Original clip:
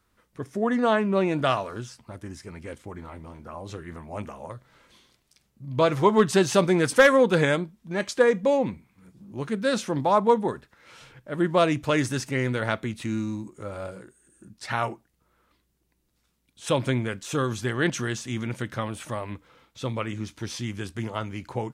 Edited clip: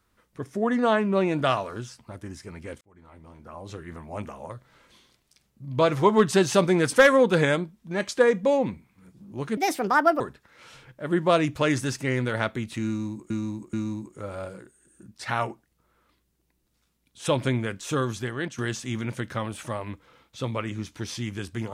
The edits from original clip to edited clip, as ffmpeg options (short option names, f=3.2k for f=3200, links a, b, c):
-filter_complex "[0:a]asplit=7[a][b][c][d][e][f][g];[a]atrim=end=2.81,asetpts=PTS-STARTPTS,afade=t=out:st=2.806:d=0.004:c=hsin[h];[b]atrim=start=2.81:end=9.574,asetpts=PTS-STARTPTS,afade=t=in:d=1.41:c=qsin[i];[c]atrim=start=9.57:end=10.48,asetpts=PTS-STARTPTS,asetrate=63504,aresample=44100[j];[d]atrim=start=10.476:end=13.582[k];[e]atrim=start=13.148:end=13.582[l];[f]atrim=start=13.148:end=18,asetpts=PTS-STARTPTS,afade=t=out:st=4.302:d=0.55:silence=0.237137[m];[g]atrim=start=18,asetpts=PTS-STARTPTS,afade=t=in:d=0.004:c=hsin:silence=0.237137[n];[h][i]concat=n=2:v=0:a=1[o];[o][j]acrossfade=d=0.004:c1=hsin:c2=hsin[p];[p][k]acrossfade=d=0.004:c1=hsin:c2=hsin[q];[q][l]acrossfade=d=0.004:c1=hsin:c2=hsin[r];[m][n]concat=n=2:v=0:a=1[s];[r][s]acrossfade=d=0.004:c1=hsin:c2=hsin"